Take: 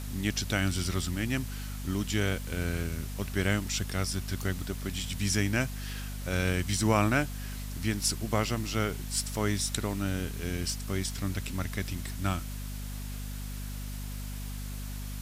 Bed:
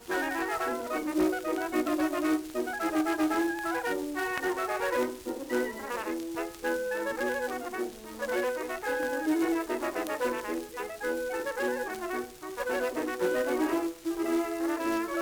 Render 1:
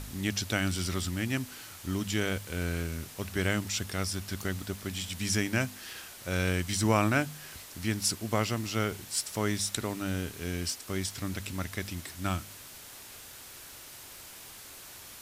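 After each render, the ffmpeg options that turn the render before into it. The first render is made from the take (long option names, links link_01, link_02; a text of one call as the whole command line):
ffmpeg -i in.wav -af "bandreject=frequency=50:width_type=h:width=4,bandreject=frequency=100:width_type=h:width=4,bandreject=frequency=150:width_type=h:width=4,bandreject=frequency=200:width_type=h:width=4,bandreject=frequency=250:width_type=h:width=4" out.wav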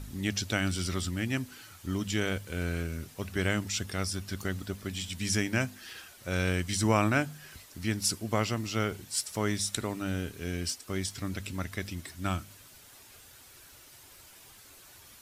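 ffmpeg -i in.wav -af "afftdn=noise_reduction=8:noise_floor=-48" out.wav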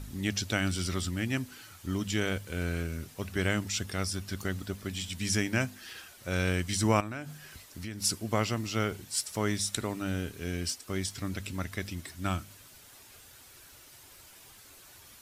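ffmpeg -i in.wav -filter_complex "[0:a]asettb=1/sr,asplit=3[link_01][link_02][link_03];[link_01]atrim=end=7.004[link_04];[link_02]atrim=start=7:end=8.01,asetpts=PTS-STARTPTS,afade=type=in:duration=0.004:curve=qsin,afade=type=out:start_time=1.006:duration=0.004:curve=qsin,acompressor=threshold=-35dB:ratio=6:attack=3.2:release=140:knee=1:detection=peak[link_05];[link_03]atrim=start=8.006[link_06];[link_04][link_05]acrossfade=duration=0.004:curve1=hsin:curve2=qsin[link_07];[link_07][link_06]acrossfade=duration=0.004:curve1=qsin:curve2=hsin" out.wav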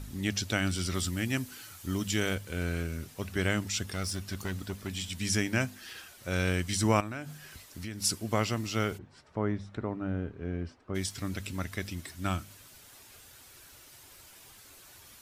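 ffmpeg -i in.wav -filter_complex "[0:a]asettb=1/sr,asplit=3[link_01][link_02][link_03];[link_01]atrim=end=0.944[link_04];[link_02]atrim=start=0.94:end=2.35,asetpts=PTS-STARTPTS,afade=type=in:duration=0.004:curve=qsin,afade=type=out:start_time=1.406:duration=0.004:curve=qsin,highshelf=frequency=5800:gain=6.5[link_05];[link_03]atrim=start=2.346[link_06];[link_04][link_05]acrossfade=duration=0.004:curve1=hsin:curve2=qsin[link_07];[link_07][link_06]acrossfade=duration=0.004:curve1=qsin:curve2=hsin,asplit=3[link_08][link_09][link_10];[link_08]afade=type=out:start_time=3.92:duration=0.02[link_11];[link_09]asoftclip=type=hard:threshold=-28.5dB,afade=type=in:start_time=3.92:duration=0.02,afade=type=out:start_time=4.88:duration=0.02[link_12];[link_10]afade=type=in:start_time=4.88:duration=0.02[link_13];[link_11][link_12][link_13]amix=inputs=3:normalize=0,asplit=3[link_14][link_15][link_16];[link_14]afade=type=out:start_time=8.97:duration=0.02[link_17];[link_15]lowpass=1200,afade=type=in:start_time=8.97:duration=0.02,afade=type=out:start_time=10.94:duration=0.02[link_18];[link_16]afade=type=in:start_time=10.94:duration=0.02[link_19];[link_17][link_18][link_19]amix=inputs=3:normalize=0" out.wav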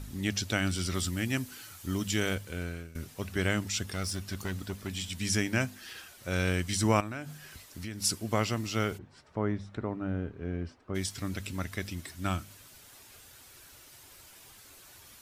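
ffmpeg -i in.wav -filter_complex "[0:a]asplit=2[link_01][link_02];[link_01]atrim=end=2.95,asetpts=PTS-STARTPTS,afade=type=out:start_time=2.41:duration=0.54:silence=0.141254[link_03];[link_02]atrim=start=2.95,asetpts=PTS-STARTPTS,afade=type=in:duration=0.004:curve=hsin:silence=0.141254[link_04];[link_03][link_04]concat=n=2:v=0:a=1" out.wav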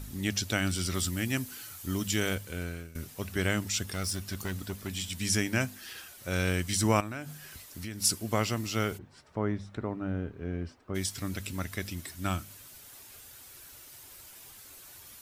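ffmpeg -i in.wav -af "highshelf=frequency=10000:gain=8.5" out.wav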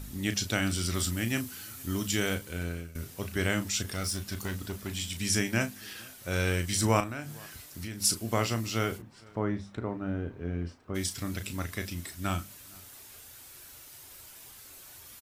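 ffmpeg -i in.wav -filter_complex "[0:a]asplit=2[link_01][link_02];[link_02]adelay=35,volume=-9dB[link_03];[link_01][link_03]amix=inputs=2:normalize=0,asplit=2[link_04][link_05];[link_05]adelay=460.6,volume=-25dB,highshelf=frequency=4000:gain=-10.4[link_06];[link_04][link_06]amix=inputs=2:normalize=0" out.wav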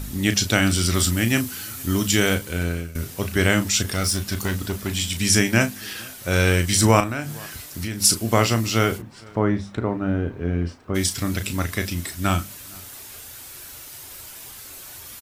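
ffmpeg -i in.wav -af "volume=10dB,alimiter=limit=-3dB:level=0:latency=1" out.wav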